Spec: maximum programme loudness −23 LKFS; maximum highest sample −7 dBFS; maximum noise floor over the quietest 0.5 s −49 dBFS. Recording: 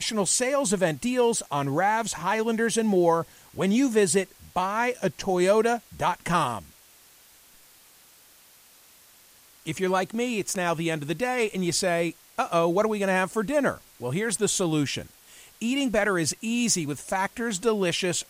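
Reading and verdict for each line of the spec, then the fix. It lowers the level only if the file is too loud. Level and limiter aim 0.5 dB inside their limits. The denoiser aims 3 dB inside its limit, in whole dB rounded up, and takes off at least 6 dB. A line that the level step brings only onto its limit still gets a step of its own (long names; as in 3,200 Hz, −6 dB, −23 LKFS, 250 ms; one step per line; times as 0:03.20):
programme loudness −25.5 LKFS: in spec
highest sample −8.5 dBFS: in spec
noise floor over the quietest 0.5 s −55 dBFS: in spec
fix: no processing needed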